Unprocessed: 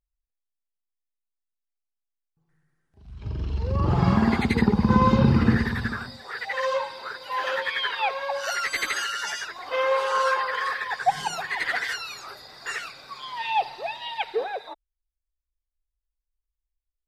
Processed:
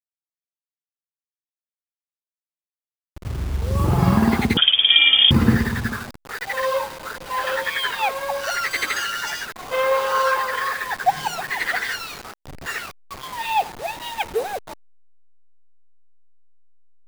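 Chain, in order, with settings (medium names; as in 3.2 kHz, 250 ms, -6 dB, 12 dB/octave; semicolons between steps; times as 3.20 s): send-on-delta sampling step -33.5 dBFS; 4.57–5.31 s: frequency inversion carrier 3.4 kHz; trim +3.5 dB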